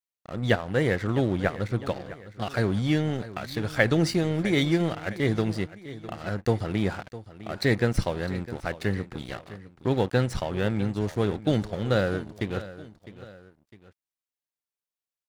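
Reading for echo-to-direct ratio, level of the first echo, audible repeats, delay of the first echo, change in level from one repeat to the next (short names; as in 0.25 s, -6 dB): -15.0 dB, -16.0 dB, 2, 0.656 s, -6.5 dB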